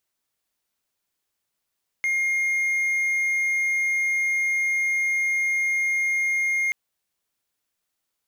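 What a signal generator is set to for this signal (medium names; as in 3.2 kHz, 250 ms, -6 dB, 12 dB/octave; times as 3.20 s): tone triangle 2.13 kHz -18.5 dBFS 4.68 s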